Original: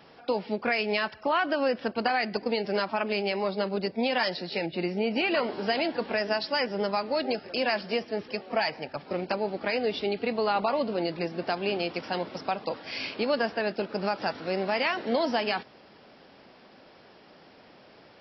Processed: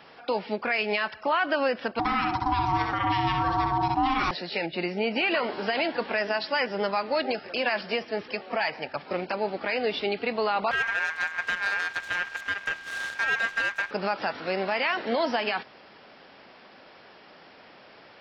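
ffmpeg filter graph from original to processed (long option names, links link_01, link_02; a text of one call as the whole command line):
ffmpeg -i in.wav -filter_complex "[0:a]asettb=1/sr,asplit=3[link_01][link_02][link_03];[link_01]atrim=end=1.994[link_04];[link_02]atrim=start=1.99:end=4.31,asetpts=PTS-STARTPTS,afade=type=in:duration=0.004:curve=qsin,afade=type=out:start_time=2.316:duration=0.004:curve=qsin,equalizer=frequency=270:width=1:gain=12.5,aeval=exprs='val(0)*sin(2*PI*530*n/s)':channel_layout=same,asplit=2[link_05][link_06];[link_06]adelay=64,lowpass=frequency=3600:poles=1,volume=-4dB,asplit=2[link_07][link_08];[link_08]adelay=64,lowpass=frequency=3600:poles=1,volume=0.32,asplit=2[link_09][link_10];[link_10]adelay=64,lowpass=frequency=3600:poles=1,volume=0.32,asplit=2[link_11][link_12];[link_12]adelay=64,lowpass=frequency=3600:poles=1,volume=0.32[link_13];[link_05][link_07][link_09][link_11][link_13]amix=inputs=5:normalize=0,atrim=end_sample=102312[link_14];[link_03]atrim=start=4.306[link_15];[link_04][link_14]acrossfade=duration=0.004:curve1=hsin:curve2=qsin[link_16];[link_16][link_15]acrossfade=duration=0.004:curve1=qsin:curve2=hsin,asettb=1/sr,asplit=3[link_17][link_18][link_19];[link_17]atrim=end=10.714[link_20];[link_18]atrim=start=10.71:end=13.91,asetpts=PTS-STARTPTS,afade=type=in:duration=0.004:curve=qsin,afade=type=out:start_time=3.196:duration=0.004:curve=qsin,aeval=exprs='abs(val(0))':channel_layout=same,aeval=exprs='val(0)*sin(2*PI*1600*n/s)':channel_layout=same[link_21];[link_19]atrim=start=13.906[link_22];[link_20][link_21]acrossfade=duration=0.004:curve1=hsin:curve2=qsin[link_23];[link_23][link_22]acrossfade=duration=0.004:curve1=qsin:curve2=hsin,acrossover=split=4400[link_24][link_25];[link_25]acompressor=threshold=-45dB:ratio=4:attack=1:release=60[link_26];[link_24][link_26]amix=inputs=2:normalize=0,equalizer=frequency=1800:width=0.36:gain=8.5,alimiter=limit=-13dB:level=0:latency=1:release=64,volume=-2.5dB" out.wav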